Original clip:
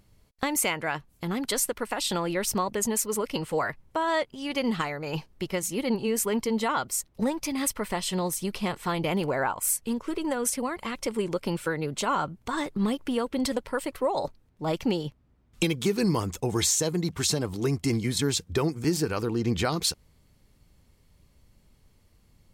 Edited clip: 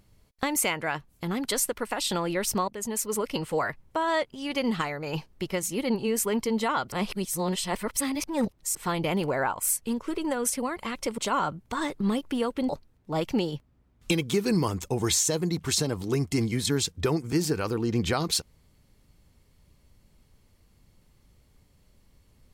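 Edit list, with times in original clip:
2.68–3.15 fade in, from -12 dB
6.92–8.75 reverse
11.18–11.94 cut
13.45–14.21 cut

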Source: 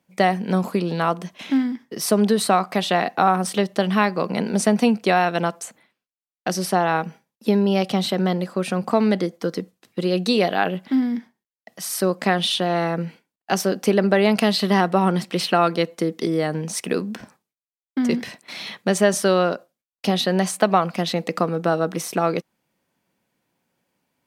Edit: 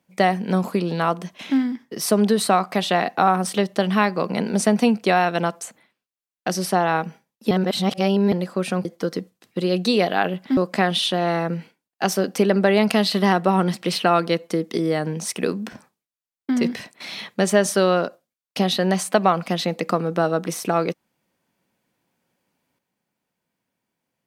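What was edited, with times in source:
7.51–8.32 reverse
8.85–9.26 cut
10.98–12.05 cut

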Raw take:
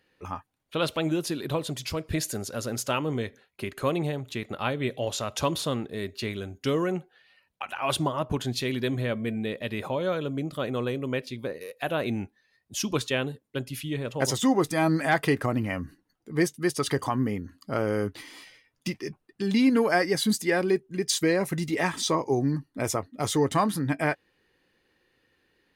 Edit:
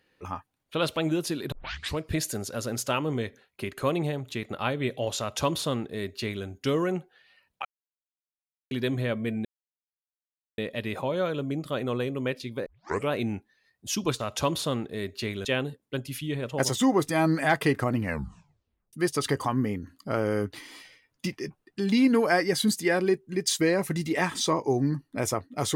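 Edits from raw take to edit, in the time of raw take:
1.52 tape start 0.46 s
5.2–6.45 copy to 13.07
7.65–8.71 mute
9.45 insert silence 1.13 s
11.53 tape start 0.46 s
15.63 tape stop 0.92 s

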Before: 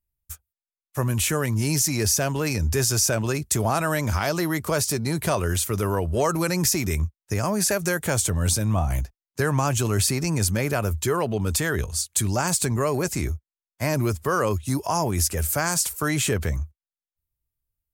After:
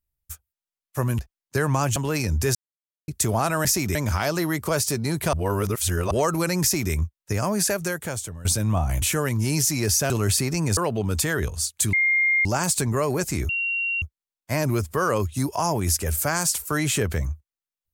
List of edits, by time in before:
1.19–2.27 swap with 9.03–9.8
2.86–3.39 mute
5.34–6.12 reverse
6.63–6.93 copy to 3.96
7.62–8.46 fade out, to -18 dB
10.47–11.13 cut
12.29 add tone 2120 Hz -17 dBFS 0.52 s
13.33 add tone 2750 Hz -22.5 dBFS 0.53 s

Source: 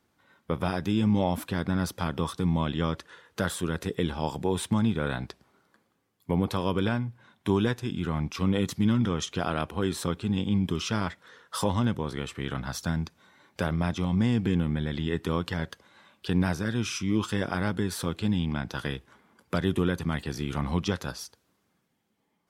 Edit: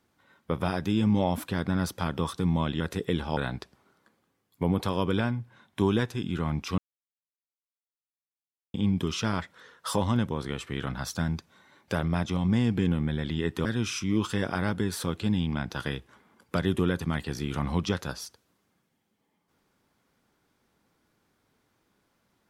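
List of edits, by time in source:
2.8–3.7 cut
4.27–5.05 cut
8.46–10.42 mute
15.33–16.64 cut

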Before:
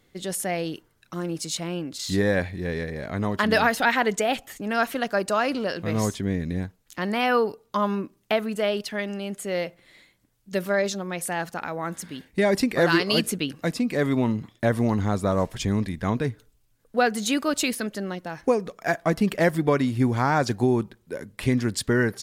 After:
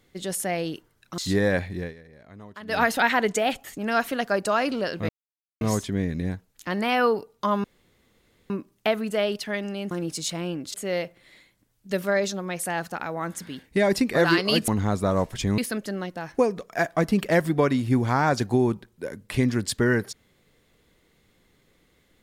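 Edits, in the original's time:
1.18–2.01 move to 9.36
2.61–3.66 dip -18 dB, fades 0.16 s
5.92 insert silence 0.52 s
7.95 insert room tone 0.86 s
13.3–14.89 cut
15.79–17.67 cut

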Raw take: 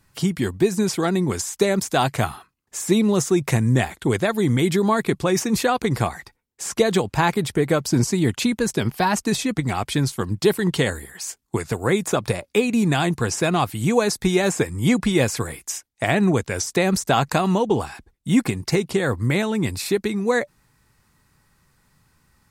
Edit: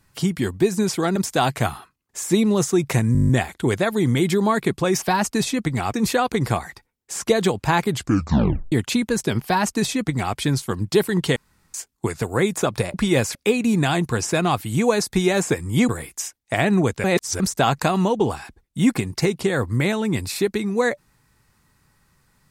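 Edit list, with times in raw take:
1.16–1.74 cut
3.71 stutter 0.02 s, 9 plays
7.39 tape stop 0.83 s
8.94–9.86 copy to 5.44
10.86–11.24 room tone
14.98–15.39 move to 12.44
16.54–16.9 reverse

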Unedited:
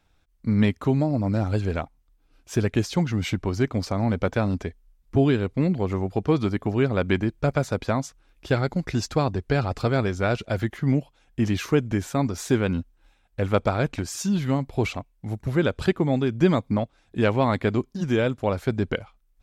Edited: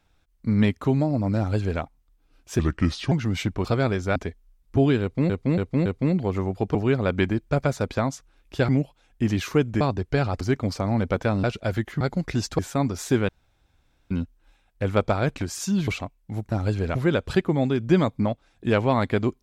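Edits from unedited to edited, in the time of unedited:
1.38–1.81 copy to 15.46
2.59–2.99 speed 76%
3.52–4.55 swap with 9.78–10.29
5.41–5.69 loop, 4 plays
6.3–6.66 cut
8.6–9.18 swap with 10.86–11.98
12.68 insert room tone 0.82 s
14.45–14.82 cut

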